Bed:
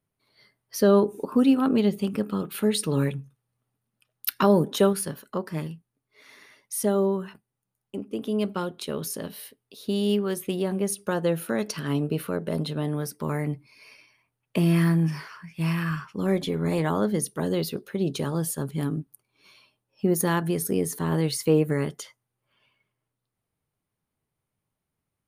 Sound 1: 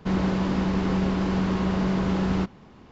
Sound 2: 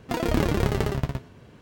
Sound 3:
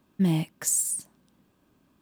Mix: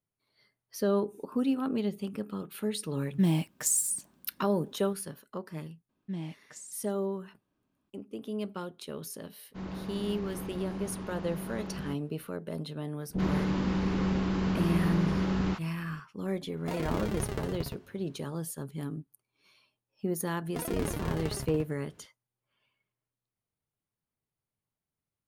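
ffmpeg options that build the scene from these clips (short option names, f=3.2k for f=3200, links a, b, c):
-filter_complex "[3:a]asplit=2[a][b];[1:a]asplit=2[c][d];[2:a]asplit=2[e][f];[0:a]volume=-9dB[g];[b]lowpass=5.4k[h];[d]acrossover=split=660[i][j];[j]adelay=40[k];[i][k]amix=inputs=2:normalize=0[l];[e]acontrast=51[m];[a]atrim=end=2.01,asetpts=PTS-STARTPTS,volume=-2dB,afade=t=in:d=0.004:c=hsin,afade=t=out:st=2.006:d=0.004:c=hsin,adelay=2990[n];[h]atrim=end=2.01,asetpts=PTS-STARTPTS,volume=-13.5dB,afade=t=in:d=0.004:c=hsin,afade=t=out:st=2.006:d=0.004:c=hsin,adelay=259749S[o];[c]atrim=end=2.91,asetpts=PTS-STARTPTS,volume=-15dB,afade=t=in:d=0.1,afade=t=out:st=2.81:d=0.1,adelay=9490[p];[l]atrim=end=2.91,asetpts=PTS-STARTPTS,volume=-4.5dB,afade=t=in:d=0.004:c=hsin,afade=t=out:st=2.906:d=0.004:c=hsin,adelay=13090[q];[m]atrim=end=1.61,asetpts=PTS-STARTPTS,volume=-16dB,afade=t=in:d=0.004:c=hsin,afade=t=out:st=1.606:d=0.004:c=hsin,adelay=16570[r];[f]atrim=end=1.61,asetpts=PTS-STARTPTS,volume=-11dB,afade=t=in:d=0.004:c=hsin,afade=t=out:st=1.606:d=0.004:c=hsin,adelay=20450[s];[g][n][o][p][q][r][s]amix=inputs=7:normalize=0"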